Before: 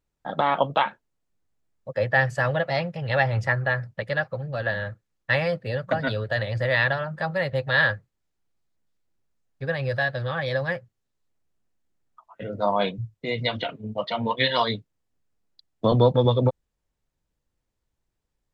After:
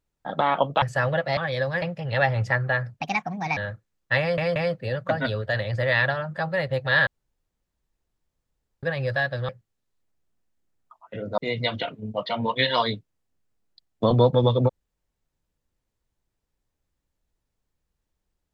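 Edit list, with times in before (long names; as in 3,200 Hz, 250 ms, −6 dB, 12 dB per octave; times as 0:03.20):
0:00.82–0:02.24: remove
0:03.98–0:04.75: play speed 138%
0:05.38: stutter 0.18 s, 3 plays
0:07.89–0:09.65: fill with room tone
0:10.31–0:10.76: move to 0:02.79
0:12.65–0:13.19: remove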